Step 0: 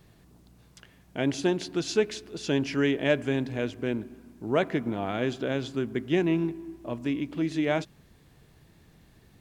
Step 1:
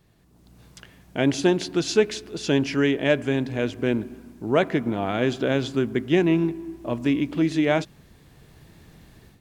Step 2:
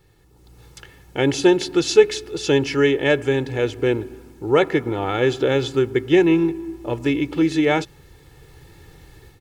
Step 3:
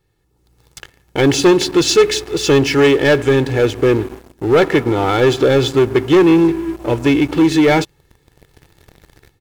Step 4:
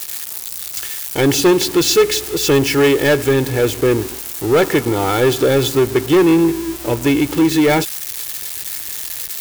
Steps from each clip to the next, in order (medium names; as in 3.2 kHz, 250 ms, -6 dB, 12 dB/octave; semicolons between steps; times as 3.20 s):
level rider gain up to 12 dB; trim -4.5 dB
comb 2.3 ms, depth 73%; trim +2.5 dB
waveshaping leveller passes 3; trim -2.5 dB
zero-crossing glitches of -13.5 dBFS; trim -1.5 dB